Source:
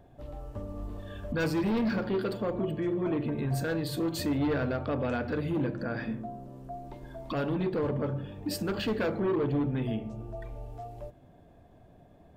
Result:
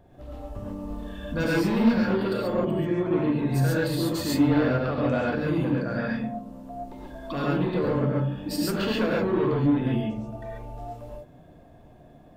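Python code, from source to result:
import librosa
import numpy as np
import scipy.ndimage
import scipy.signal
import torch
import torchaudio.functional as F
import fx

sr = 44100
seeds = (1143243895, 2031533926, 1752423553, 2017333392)

y = fx.rev_gated(x, sr, seeds[0], gate_ms=160, shape='rising', drr_db=-4.5)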